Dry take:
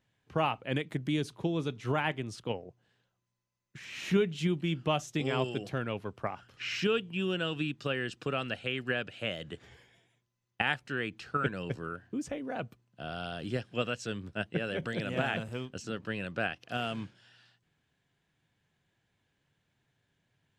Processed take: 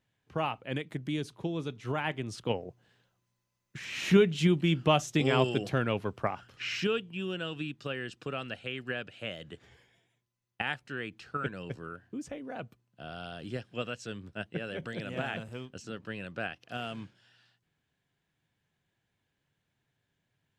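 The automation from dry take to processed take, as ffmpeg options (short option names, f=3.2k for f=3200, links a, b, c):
-af "volume=5dB,afade=t=in:st=2:d=0.67:silence=0.421697,afade=t=out:st=6.05:d=1.06:silence=0.375837"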